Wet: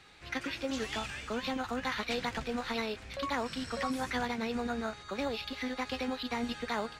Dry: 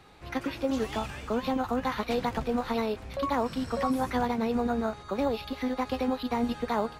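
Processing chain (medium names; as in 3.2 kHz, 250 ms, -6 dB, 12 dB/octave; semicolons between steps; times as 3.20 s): high-order bell 3.6 kHz +9.5 dB 2.9 oct; trim -7 dB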